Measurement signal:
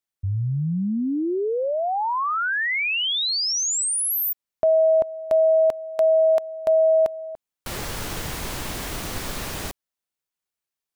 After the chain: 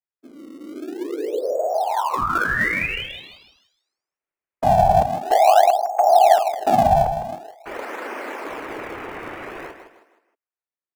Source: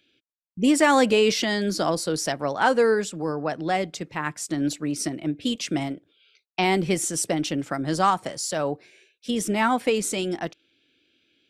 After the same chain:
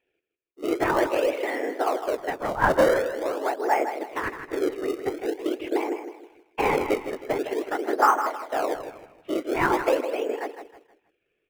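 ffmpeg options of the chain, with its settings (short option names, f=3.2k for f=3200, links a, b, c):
-filter_complex "[0:a]dynaudnorm=f=370:g=9:m=9dB,afftfilt=real='hypot(re,im)*cos(2*PI*random(0))':imag='hypot(re,im)*sin(2*PI*random(1))':win_size=512:overlap=0.75,highpass=f=230:t=q:w=0.5412,highpass=f=230:t=q:w=1.307,lowpass=f=2.4k:t=q:w=0.5176,lowpass=f=2.4k:t=q:w=0.7071,lowpass=f=2.4k:t=q:w=1.932,afreqshift=84,aecho=1:1:158|316|474|632:0.355|0.128|0.046|0.0166,asplit=2[a][b];[b]acrusher=samples=30:mix=1:aa=0.000001:lfo=1:lforange=48:lforate=0.46,volume=-9dB[c];[a][c]amix=inputs=2:normalize=0,volume=-1dB"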